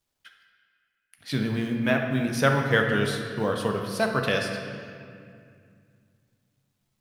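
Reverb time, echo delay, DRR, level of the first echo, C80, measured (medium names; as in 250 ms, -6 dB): 2.3 s, no echo, 2.0 dB, no echo, 5.5 dB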